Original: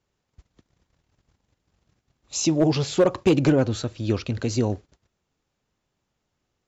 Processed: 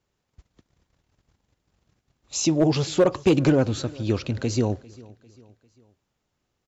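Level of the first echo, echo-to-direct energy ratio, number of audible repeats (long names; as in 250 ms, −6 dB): −22.5 dB, −21.5 dB, 2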